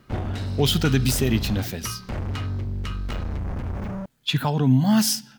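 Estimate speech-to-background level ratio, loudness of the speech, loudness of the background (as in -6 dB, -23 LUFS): 9.0 dB, -22.0 LUFS, -31.0 LUFS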